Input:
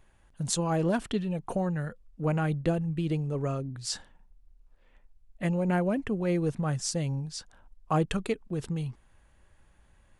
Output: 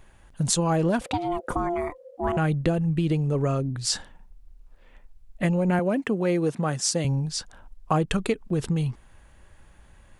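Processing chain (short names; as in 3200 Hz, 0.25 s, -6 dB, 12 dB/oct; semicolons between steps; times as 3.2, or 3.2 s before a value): 5.79–7.05 HPF 200 Hz 12 dB/oct; compressor 3:1, threshold -29 dBFS, peak gain reduction 7 dB; 1.01–2.37 ring modulator 520 Hz; gain +8.5 dB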